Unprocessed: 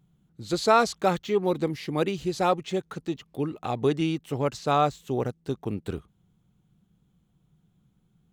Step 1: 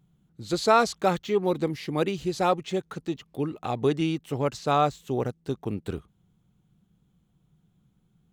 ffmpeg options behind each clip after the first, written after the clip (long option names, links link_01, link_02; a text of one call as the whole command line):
ffmpeg -i in.wav -af anull out.wav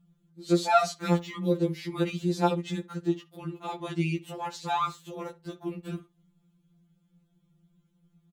ffmpeg -i in.wav -filter_complex "[0:a]asplit=2[link_01][link_02];[link_02]adelay=64,lowpass=frequency=2600:poles=1,volume=-18dB,asplit=2[link_03][link_04];[link_04]adelay=64,lowpass=frequency=2600:poles=1,volume=0.16[link_05];[link_01][link_03][link_05]amix=inputs=3:normalize=0,afftfilt=real='re*2.83*eq(mod(b,8),0)':imag='im*2.83*eq(mod(b,8),0)':win_size=2048:overlap=0.75" out.wav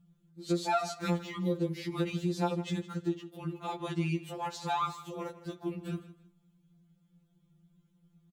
ffmpeg -i in.wav -af "equalizer=frequency=110:width=2.7:gain=7.5,acompressor=threshold=-26dB:ratio=3,aecho=1:1:160|320:0.158|0.038,volume=-1.5dB" out.wav